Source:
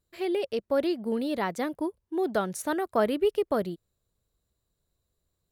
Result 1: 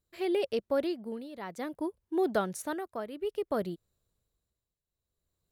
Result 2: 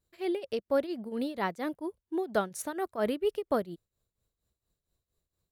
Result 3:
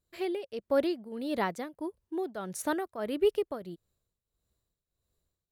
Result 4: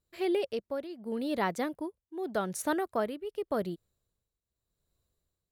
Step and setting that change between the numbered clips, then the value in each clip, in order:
tremolo, rate: 0.57 Hz, 4.3 Hz, 1.6 Hz, 0.85 Hz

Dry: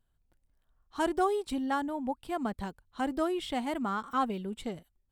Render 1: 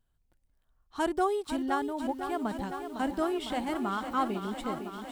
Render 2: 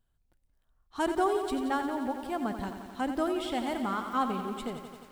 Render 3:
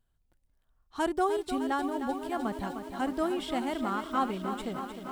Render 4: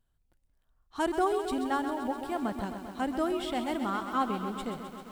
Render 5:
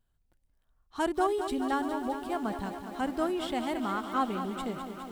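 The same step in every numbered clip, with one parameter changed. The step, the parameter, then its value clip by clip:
bit-crushed delay, time: 505 ms, 88 ms, 305 ms, 131 ms, 206 ms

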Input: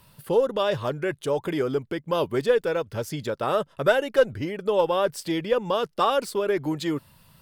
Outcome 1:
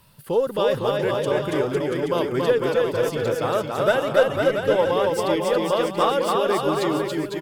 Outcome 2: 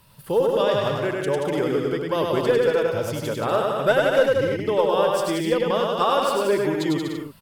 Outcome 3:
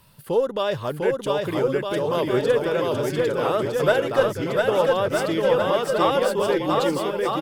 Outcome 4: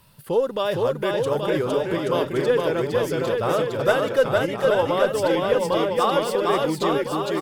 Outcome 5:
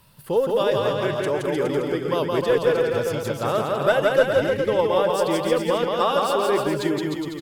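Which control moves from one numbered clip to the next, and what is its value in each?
bouncing-ball echo, first gap: 280 ms, 100 ms, 700 ms, 460 ms, 170 ms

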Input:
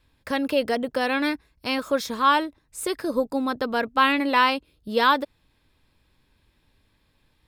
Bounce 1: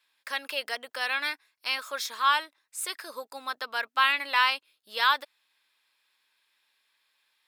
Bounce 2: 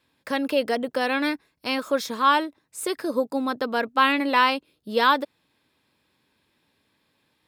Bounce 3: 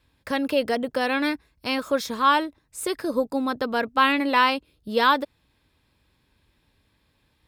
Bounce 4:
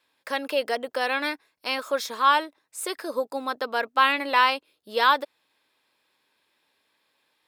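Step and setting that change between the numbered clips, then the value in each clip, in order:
high-pass, cutoff frequency: 1.3 kHz, 180 Hz, 41 Hz, 500 Hz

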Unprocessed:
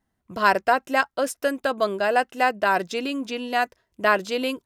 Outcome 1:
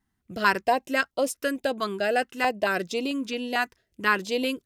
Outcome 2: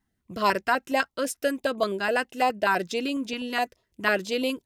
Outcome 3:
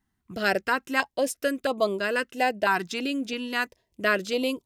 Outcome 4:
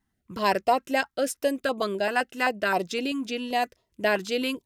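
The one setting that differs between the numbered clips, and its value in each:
step-sequenced notch, rate: 4.5 Hz, 12 Hz, 3 Hz, 7.7 Hz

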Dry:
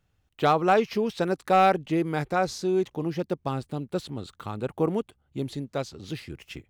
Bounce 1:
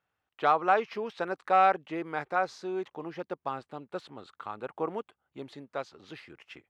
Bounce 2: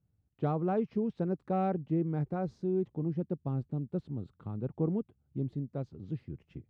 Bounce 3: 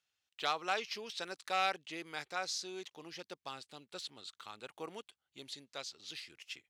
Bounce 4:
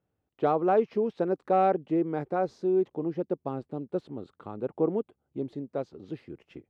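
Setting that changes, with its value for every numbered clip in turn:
band-pass filter, frequency: 1.2 kHz, 140 Hz, 4.7 kHz, 400 Hz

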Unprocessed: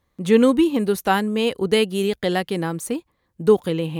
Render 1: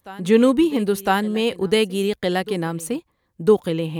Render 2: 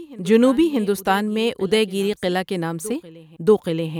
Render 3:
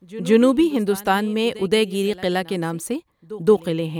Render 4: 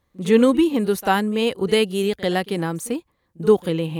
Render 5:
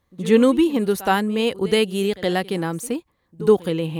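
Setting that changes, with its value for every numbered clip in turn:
reverse echo, time: 1007 ms, 632 ms, 172 ms, 43 ms, 70 ms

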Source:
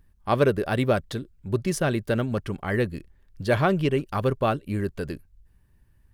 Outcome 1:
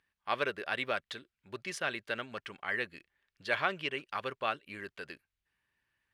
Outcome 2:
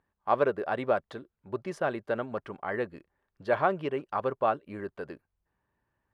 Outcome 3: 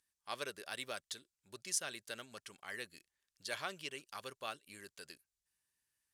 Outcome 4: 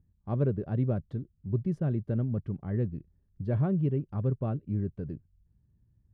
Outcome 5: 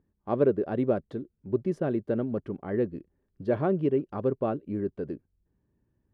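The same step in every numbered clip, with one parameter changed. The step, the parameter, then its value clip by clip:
band-pass filter, frequency: 2.4 kHz, 880 Hz, 7.2 kHz, 130 Hz, 330 Hz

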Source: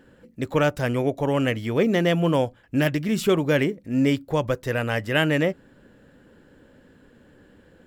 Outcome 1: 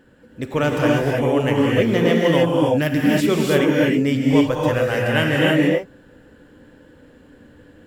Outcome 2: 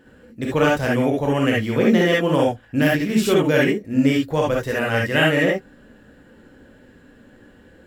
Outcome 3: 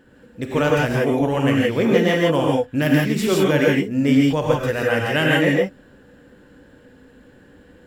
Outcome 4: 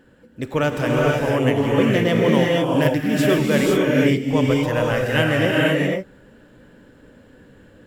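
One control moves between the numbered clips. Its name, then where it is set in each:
gated-style reverb, gate: 340 ms, 90 ms, 190 ms, 530 ms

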